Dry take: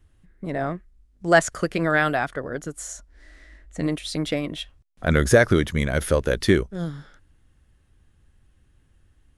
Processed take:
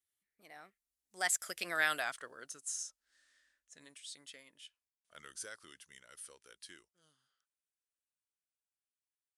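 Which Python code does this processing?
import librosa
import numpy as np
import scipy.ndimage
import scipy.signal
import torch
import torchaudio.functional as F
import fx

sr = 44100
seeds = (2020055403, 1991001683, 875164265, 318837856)

y = fx.doppler_pass(x, sr, speed_mps=30, closest_m=11.0, pass_at_s=1.91)
y = np.diff(y, prepend=0.0)
y = F.gain(torch.from_numpy(y), 3.5).numpy()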